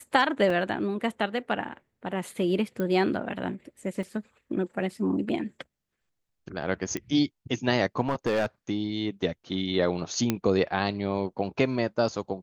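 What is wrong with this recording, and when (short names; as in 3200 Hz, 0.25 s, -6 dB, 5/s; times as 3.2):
0.5 gap 3.1 ms
2.8 pop -19 dBFS
4.03 gap 2.4 ms
6.97 pop -17 dBFS
8.02–8.46 clipped -21 dBFS
10.3 pop -10 dBFS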